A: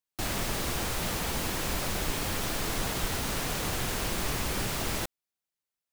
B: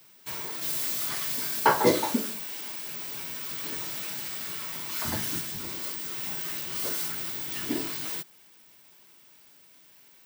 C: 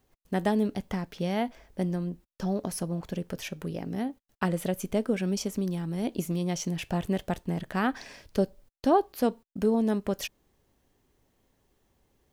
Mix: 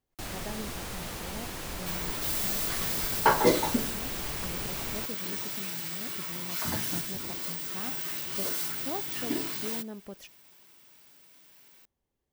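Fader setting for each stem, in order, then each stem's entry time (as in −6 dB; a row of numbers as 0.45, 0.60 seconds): −6.5, −1.0, −14.5 decibels; 0.00, 1.60, 0.00 seconds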